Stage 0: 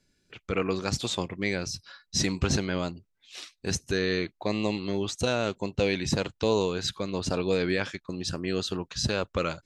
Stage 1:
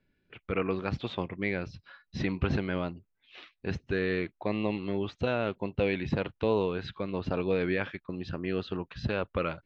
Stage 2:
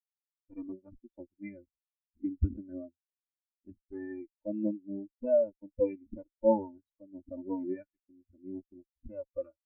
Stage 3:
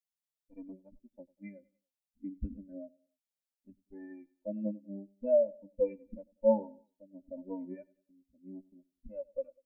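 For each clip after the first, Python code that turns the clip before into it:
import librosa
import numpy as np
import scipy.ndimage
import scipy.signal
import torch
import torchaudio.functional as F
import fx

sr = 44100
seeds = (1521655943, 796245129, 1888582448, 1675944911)

y1 = scipy.signal.sosfilt(scipy.signal.butter(4, 3000.0, 'lowpass', fs=sr, output='sos'), x)
y1 = y1 * librosa.db_to_amplitude(-2.0)
y2 = fx.lower_of_two(y1, sr, delay_ms=3.4)
y2 = fx.spectral_expand(y2, sr, expansion=4.0)
y3 = fx.fixed_phaser(y2, sr, hz=340.0, stages=6)
y3 = fx.echo_feedback(y3, sr, ms=96, feedback_pct=38, wet_db=-23)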